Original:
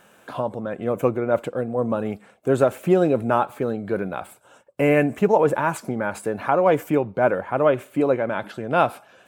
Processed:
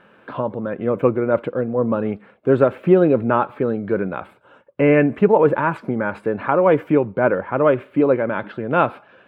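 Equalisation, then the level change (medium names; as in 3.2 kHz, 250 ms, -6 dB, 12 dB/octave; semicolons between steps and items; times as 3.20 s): distance through air 430 m; bass shelf 150 Hz -5 dB; peaking EQ 720 Hz -7.5 dB 0.45 oct; +6.5 dB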